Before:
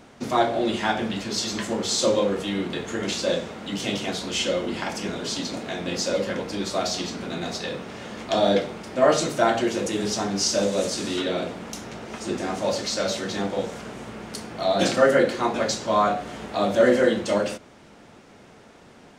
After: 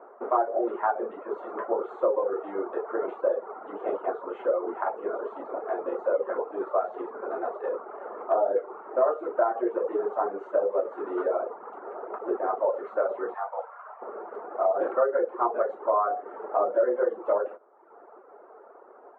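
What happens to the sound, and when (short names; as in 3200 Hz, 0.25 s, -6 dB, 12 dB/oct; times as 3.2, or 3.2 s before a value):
13.34–14.02 Chebyshev band-stop 110–850 Hz
whole clip: elliptic band-pass 390–1300 Hz, stop band 60 dB; compressor 4:1, threshold -26 dBFS; reverb removal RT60 0.92 s; gain +5.5 dB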